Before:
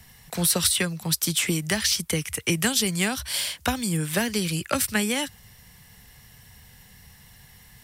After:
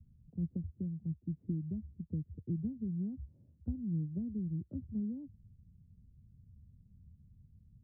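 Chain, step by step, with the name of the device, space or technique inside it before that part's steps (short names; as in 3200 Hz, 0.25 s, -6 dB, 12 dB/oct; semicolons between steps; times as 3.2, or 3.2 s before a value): the neighbour's flat through the wall (LPF 270 Hz 24 dB/oct; bell 85 Hz +6 dB 0.67 oct); gain -8.5 dB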